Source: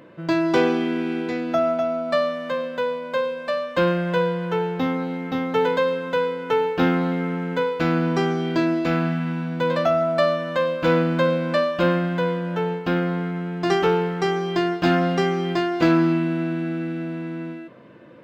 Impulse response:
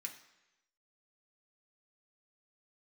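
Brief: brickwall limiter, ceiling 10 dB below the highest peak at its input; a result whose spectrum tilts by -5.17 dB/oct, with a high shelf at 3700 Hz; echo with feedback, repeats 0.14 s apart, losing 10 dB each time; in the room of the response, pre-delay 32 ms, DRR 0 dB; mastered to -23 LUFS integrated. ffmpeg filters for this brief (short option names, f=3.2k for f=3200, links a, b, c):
-filter_complex "[0:a]highshelf=f=3.7k:g=5.5,alimiter=limit=-14.5dB:level=0:latency=1,aecho=1:1:140|280|420|560:0.316|0.101|0.0324|0.0104,asplit=2[a][b];[1:a]atrim=start_sample=2205,adelay=32[c];[b][c]afir=irnorm=-1:irlink=0,volume=3dB[d];[a][d]amix=inputs=2:normalize=0,volume=-1dB"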